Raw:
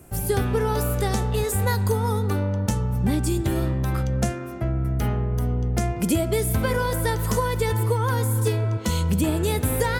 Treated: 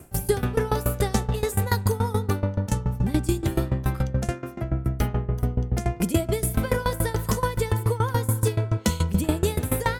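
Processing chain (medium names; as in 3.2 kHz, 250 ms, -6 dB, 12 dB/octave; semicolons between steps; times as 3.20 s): sawtooth tremolo in dB decaying 7 Hz, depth 19 dB; trim +5 dB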